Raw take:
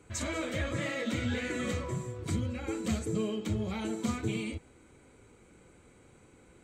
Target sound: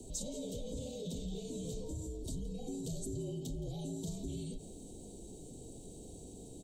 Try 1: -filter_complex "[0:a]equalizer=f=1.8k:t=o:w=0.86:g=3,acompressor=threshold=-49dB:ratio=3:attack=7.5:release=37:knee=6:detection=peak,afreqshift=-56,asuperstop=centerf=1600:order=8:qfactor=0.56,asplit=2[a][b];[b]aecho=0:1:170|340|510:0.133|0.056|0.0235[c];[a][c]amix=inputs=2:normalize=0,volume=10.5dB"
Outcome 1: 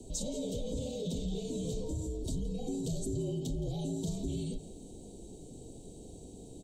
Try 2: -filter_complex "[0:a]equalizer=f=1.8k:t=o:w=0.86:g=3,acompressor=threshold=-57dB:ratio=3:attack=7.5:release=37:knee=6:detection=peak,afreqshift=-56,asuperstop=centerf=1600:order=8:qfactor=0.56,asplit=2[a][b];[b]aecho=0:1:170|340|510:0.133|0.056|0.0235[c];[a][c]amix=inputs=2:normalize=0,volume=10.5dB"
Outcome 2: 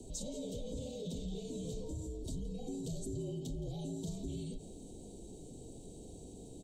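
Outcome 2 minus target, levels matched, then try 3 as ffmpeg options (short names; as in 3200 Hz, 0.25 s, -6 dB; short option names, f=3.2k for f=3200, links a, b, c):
8000 Hz band -2.5 dB
-filter_complex "[0:a]equalizer=f=1.8k:t=o:w=0.86:g=3,acompressor=threshold=-57dB:ratio=3:attack=7.5:release=37:knee=6:detection=peak,afreqshift=-56,asuperstop=centerf=1600:order=8:qfactor=0.56,highshelf=f=8.5k:g=7.5,asplit=2[a][b];[b]aecho=0:1:170|340|510:0.133|0.056|0.0235[c];[a][c]amix=inputs=2:normalize=0,volume=10.5dB"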